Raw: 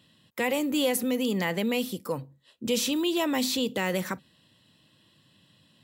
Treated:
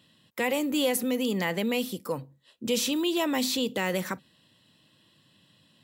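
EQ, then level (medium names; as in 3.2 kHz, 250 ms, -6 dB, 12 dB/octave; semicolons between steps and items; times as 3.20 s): bass shelf 88 Hz -6 dB; 0.0 dB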